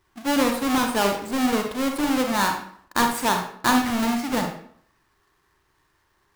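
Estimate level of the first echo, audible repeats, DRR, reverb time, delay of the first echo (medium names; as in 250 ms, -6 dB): no echo, no echo, 3.0 dB, 0.60 s, no echo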